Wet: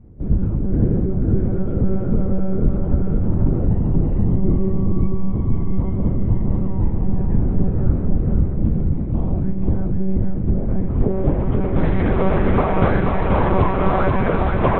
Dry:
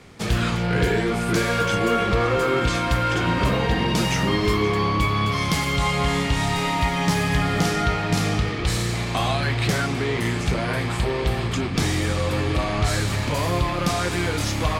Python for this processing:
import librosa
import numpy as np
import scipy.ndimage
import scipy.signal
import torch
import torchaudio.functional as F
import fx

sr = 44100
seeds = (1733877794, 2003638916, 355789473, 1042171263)

y = fx.lpc_monotone(x, sr, seeds[0], pitch_hz=190.0, order=10)
y = fx.filter_sweep_lowpass(y, sr, from_hz=260.0, to_hz=1300.0, start_s=10.52, end_s=12.01, q=0.75)
y = fx.echo_feedback(y, sr, ms=483, feedback_pct=36, wet_db=-4.0)
y = y * librosa.db_to_amplitude(5.5)